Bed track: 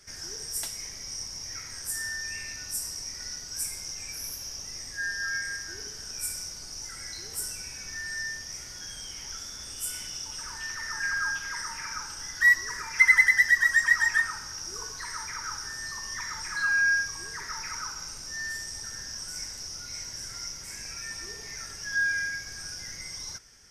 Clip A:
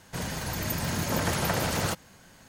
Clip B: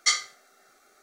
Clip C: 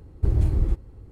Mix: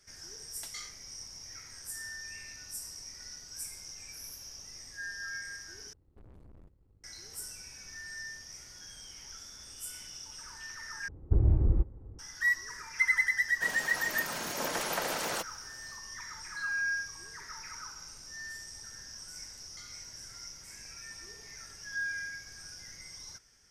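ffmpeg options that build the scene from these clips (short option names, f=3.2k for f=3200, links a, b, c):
-filter_complex "[2:a]asplit=2[a][b];[3:a]asplit=2[c][d];[0:a]volume=-8.5dB[e];[a]alimiter=limit=-15.5dB:level=0:latency=1:release=69[f];[c]aeval=exprs='(tanh(63.1*val(0)+0.7)-tanh(0.7))/63.1':c=same[g];[d]lowpass=1.1k[h];[1:a]highpass=360[i];[b]acompressor=threshold=-31dB:ratio=6:attack=3.2:release=140:knee=1:detection=peak[j];[e]asplit=3[k][l][m];[k]atrim=end=5.934[n];[g]atrim=end=1.11,asetpts=PTS-STARTPTS,volume=-17.5dB[o];[l]atrim=start=7.036:end=11.084[p];[h]atrim=end=1.11,asetpts=PTS-STARTPTS,volume=-3.5dB[q];[m]atrim=start=12.186[r];[f]atrim=end=1.02,asetpts=PTS-STARTPTS,volume=-16.5dB,afade=t=in:d=0.004:c=hsin,afade=t=out:st=1.016:d=0.004:c=hsin,adelay=680[s];[i]atrim=end=2.48,asetpts=PTS-STARTPTS,volume=-4dB,afade=t=in:d=0.004:c=hsin,afade=t=out:st=2.476:d=0.004:c=hsin,adelay=594468S[t];[j]atrim=end=1.02,asetpts=PTS-STARTPTS,volume=-18dB,afade=t=in:d=0.004:c=hsin,afade=t=out:st=1.016:d=0.004:c=hsin,adelay=19710[u];[n][o]acrossfade=d=0.004:c1=hsin:c2=hsin[v];[v][p]acrossfade=d=0.004:c1=hsin:c2=hsin[w];[w][q]acrossfade=d=0.004:c1=hsin:c2=hsin[x];[x][r]acrossfade=d=0.004:c1=hsin:c2=hsin[y];[y][s][t][u]amix=inputs=4:normalize=0"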